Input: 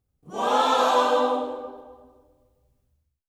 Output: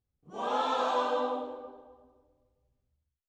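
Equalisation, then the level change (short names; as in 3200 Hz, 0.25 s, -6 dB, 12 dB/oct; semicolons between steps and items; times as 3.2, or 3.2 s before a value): air absorption 77 m; -8.5 dB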